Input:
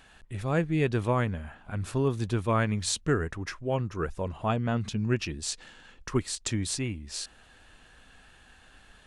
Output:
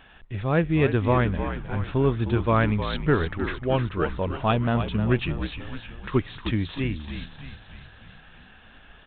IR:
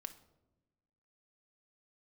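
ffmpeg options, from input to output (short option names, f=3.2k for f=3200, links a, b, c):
-filter_complex "[0:a]asettb=1/sr,asplit=3[a][b][c];[a]atrim=end=3.634[d];[b]atrim=start=3.63:end=4.64,asetpts=PTS-STARTPTS,afade=t=in:d=0.004:c=qsin,afade=t=out:st=1.006:d=0.004:c=qsin,aemphasis=mode=production:type=75kf[e];[c]atrim=start=4.636[f];[d][e]acrossfade=d=0.004:c1=hsin:c2=qsin[g];[g][f]acrossfade=d=0.004:c1=qsin:c2=hsin,asplit=7[h][i][j][k][l][m][n];[i]adelay=308,afreqshift=-58,volume=-9dB[o];[j]adelay=616,afreqshift=-116,volume=-14.2dB[p];[k]adelay=924,afreqshift=-174,volume=-19.4dB[q];[l]adelay=1232,afreqshift=-232,volume=-24.6dB[r];[m]adelay=1540,afreqshift=-290,volume=-29.8dB[s];[n]adelay=1848,afreqshift=-348,volume=-35dB[t];[h][o][p][q][r][s][t]amix=inputs=7:normalize=0,volume=4.5dB" -ar 8000 -c:a adpcm_g726 -b:a 40k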